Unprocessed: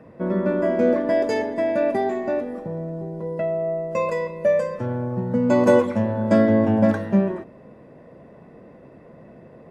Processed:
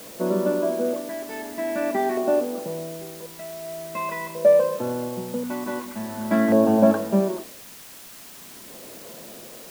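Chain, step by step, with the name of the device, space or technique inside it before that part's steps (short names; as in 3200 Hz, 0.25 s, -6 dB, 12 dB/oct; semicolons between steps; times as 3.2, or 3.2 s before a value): shortwave radio (BPF 250–2900 Hz; tremolo 0.44 Hz, depth 75%; LFO notch square 0.46 Hz 510–2000 Hz; white noise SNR 19 dB); gain +4 dB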